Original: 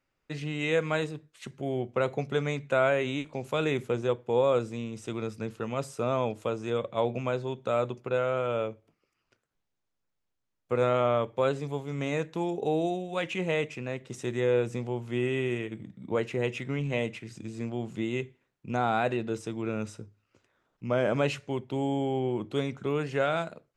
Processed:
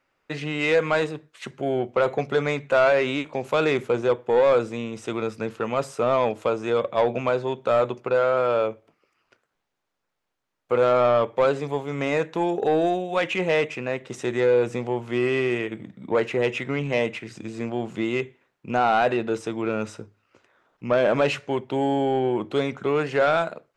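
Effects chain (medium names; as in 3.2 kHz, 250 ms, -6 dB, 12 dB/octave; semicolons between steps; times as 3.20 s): treble shelf 2.3 kHz -8.5 dB; overdrive pedal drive 15 dB, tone 7.2 kHz, clips at -13 dBFS; trim +3.5 dB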